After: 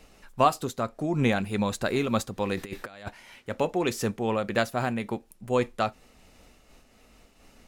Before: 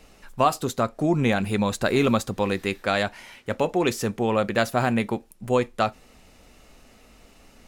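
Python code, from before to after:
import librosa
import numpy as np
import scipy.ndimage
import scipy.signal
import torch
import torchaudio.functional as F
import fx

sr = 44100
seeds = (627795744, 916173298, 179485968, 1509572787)

y = fx.over_compress(x, sr, threshold_db=-31.0, ratio=-0.5, at=(2.56, 3.09), fade=0.02)
y = fx.am_noise(y, sr, seeds[0], hz=5.7, depth_pct=65)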